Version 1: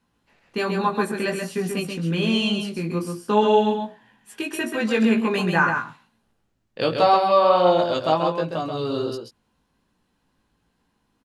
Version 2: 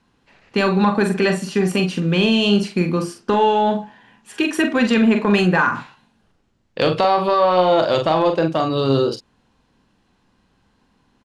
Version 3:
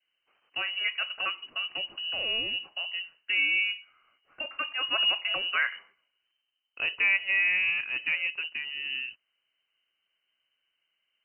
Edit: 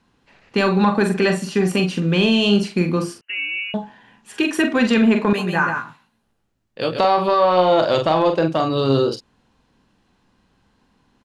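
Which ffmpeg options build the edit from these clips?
-filter_complex "[1:a]asplit=3[s0][s1][s2];[s0]atrim=end=3.212[s3];[2:a]atrim=start=3.208:end=3.742[s4];[s1]atrim=start=3.738:end=5.332[s5];[0:a]atrim=start=5.328:end=6.992[s6];[s2]atrim=start=6.988[s7];[s3][s4]acrossfade=d=0.004:c1=hsin:c2=hsin[s8];[s8][s5]acrossfade=d=0.004:c1=hsin:c2=hsin[s9];[s9][s6]acrossfade=d=0.004:c1=hsin:c2=hsin[s10];[s10][s7]acrossfade=d=0.004:c1=hsin:c2=hsin"

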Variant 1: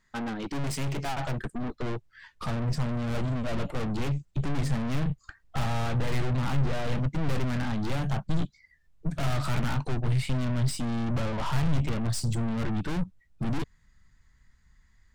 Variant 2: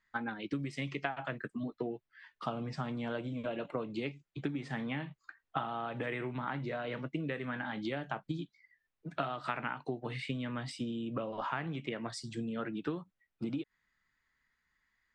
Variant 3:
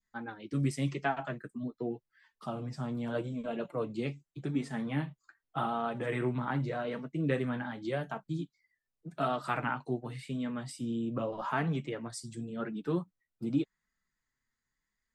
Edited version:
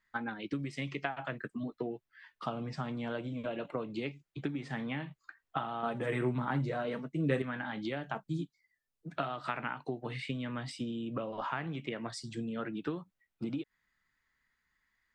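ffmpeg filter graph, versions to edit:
-filter_complex "[2:a]asplit=2[s0][s1];[1:a]asplit=3[s2][s3][s4];[s2]atrim=end=5.832[s5];[s0]atrim=start=5.828:end=7.422[s6];[s3]atrim=start=7.418:end=8.152[s7];[s1]atrim=start=8.148:end=9.102[s8];[s4]atrim=start=9.098[s9];[s5][s6]acrossfade=d=0.004:c1=hsin:c2=hsin[s10];[s10][s7]acrossfade=d=0.004:c1=hsin:c2=hsin[s11];[s11][s8]acrossfade=d=0.004:c1=hsin:c2=hsin[s12];[s12][s9]acrossfade=d=0.004:c1=hsin:c2=hsin"

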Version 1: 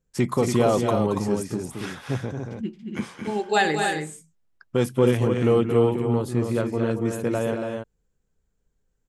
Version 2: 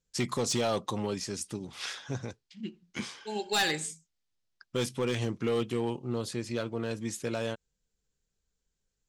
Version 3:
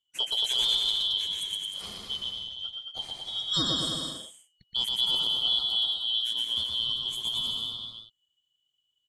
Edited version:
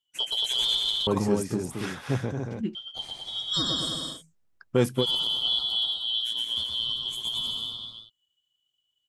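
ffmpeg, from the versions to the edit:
-filter_complex "[0:a]asplit=2[s0][s1];[2:a]asplit=3[s2][s3][s4];[s2]atrim=end=1.072[s5];[s0]atrim=start=1.068:end=2.752[s6];[s3]atrim=start=2.748:end=4.23[s7];[s1]atrim=start=4.13:end=5.06[s8];[s4]atrim=start=4.96[s9];[s5][s6]acrossfade=d=0.004:c1=hsin:c2=hsin[s10];[s10][s7]acrossfade=d=0.004:c1=hsin:c2=hsin[s11];[s11][s8]acrossfade=d=0.1:c1=tri:c2=tri[s12];[s12][s9]acrossfade=d=0.1:c1=tri:c2=tri"

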